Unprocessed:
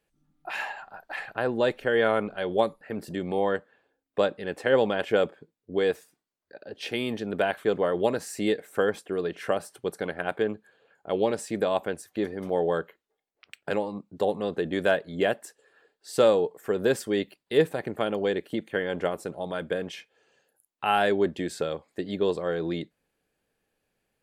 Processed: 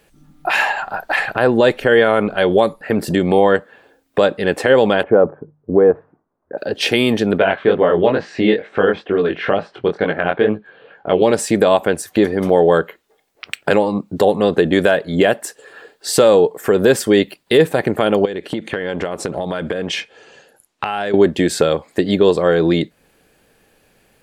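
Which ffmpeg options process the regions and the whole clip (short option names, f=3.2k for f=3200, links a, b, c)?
-filter_complex "[0:a]asettb=1/sr,asplit=3[a][b][c];[a]atrim=end=5.034[d];[b]atrim=start=5.03:end=6.58,asetpts=PTS-STARTPTS,afade=t=in:d=0.004:c=qsin,afade=t=out:st=1.546:d=0.004:c=qsin,lowpass=f=1.2k:w=0.5412,lowpass=f=1.2k:w=1.3066,bandreject=f=50:t=h:w=6,bandreject=f=100:t=h:w=6,bandreject=f=150:t=h:w=6[e];[c]atrim=start=6.576[f];[d][e]acrossfade=d=0.004:c1=hsin:c2=qsin[g];[g][f]acrossfade=d=0.004:c1=qsin:c2=hsin,asettb=1/sr,asplit=3[h][i][j];[h]atrim=end=7.384[k];[i]atrim=start=7.38:end=11.22,asetpts=PTS-STARTPTS,afade=t=in:d=0.004:c=qsin,afade=t=out:st=3.836:d=0.004:c=qsin,lowpass=f=3.6k:w=0.5412,lowpass=f=3.6k:w=1.3066,flanger=delay=18:depth=5.9:speed=2.2[l];[j]atrim=start=11.216[m];[k][l]acrossfade=d=0.004:c1=hsin:c2=qsin[n];[n][m]acrossfade=d=0.004:c1=qsin:c2=hsin,asettb=1/sr,asplit=3[o][p][q];[o]atrim=end=18.254[r];[p]atrim=start=18.25:end=21.14,asetpts=PTS-STARTPTS,afade=t=in:d=0.004:c=qsin,afade=t=out:st=2.886:d=0.004:c=qsin,lowpass=7.7k,acompressor=threshold=-36dB:ratio=10:attack=3.2:release=140:knee=1:detection=peak[s];[q]atrim=start=21.136[t];[r][s]acrossfade=d=0.004:c1=hsin:c2=qsin[u];[u][t]acrossfade=d=0.004:c1=qsin:c2=hsin,acompressor=threshold=-44dB:ratio=1.5,alimiter=level_in=22.5dB:limit=-1dB:release=50:level=0:latency=1,volume=-1dB"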